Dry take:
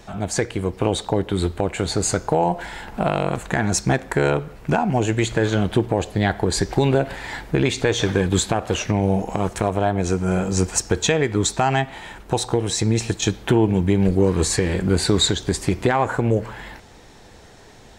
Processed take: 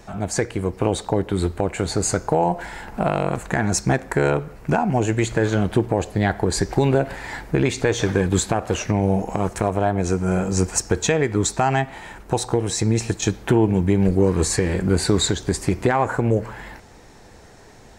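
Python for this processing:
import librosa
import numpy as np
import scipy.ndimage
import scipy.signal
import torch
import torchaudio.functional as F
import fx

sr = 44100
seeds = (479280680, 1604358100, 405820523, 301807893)

y = fx.peak_eq(x, sr, hz=3400.0, db=-6.0, octaves=0.65)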